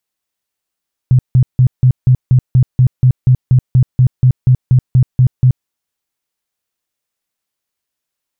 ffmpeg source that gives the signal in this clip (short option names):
-f lavfi -i "aevalsrc='0.596*sin(2*PI*127*mod(t,0.24))*lt(mod(t,0.24),10/127)':d=4.56:s=44100"